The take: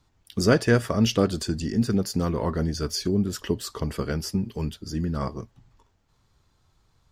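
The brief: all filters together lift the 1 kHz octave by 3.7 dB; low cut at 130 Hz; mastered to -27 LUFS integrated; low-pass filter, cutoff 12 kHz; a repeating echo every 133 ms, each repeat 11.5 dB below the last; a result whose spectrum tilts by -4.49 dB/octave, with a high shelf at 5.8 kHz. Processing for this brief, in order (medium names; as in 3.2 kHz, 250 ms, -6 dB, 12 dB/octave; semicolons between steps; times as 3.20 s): high-pass 130 Hz; low-pass 12 kHz; peaking EQ 1 kHz +4.5 dB; treble shelf 5.8 kHz +8.5 dB; feedback delay 133 ms, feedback 27%, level -11.5 dB; trim -2 dB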